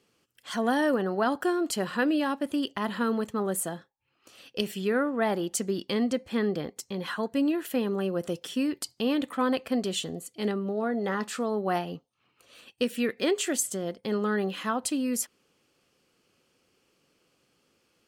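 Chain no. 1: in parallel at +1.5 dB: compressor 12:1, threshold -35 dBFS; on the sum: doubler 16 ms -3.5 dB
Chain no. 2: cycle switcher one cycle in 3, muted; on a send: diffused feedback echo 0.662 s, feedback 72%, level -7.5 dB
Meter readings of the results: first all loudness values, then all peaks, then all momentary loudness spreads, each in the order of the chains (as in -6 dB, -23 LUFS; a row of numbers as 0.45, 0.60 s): -25.0, -30.0 LUFS; -9.0, -11.5 dBFS; 7, 10 LU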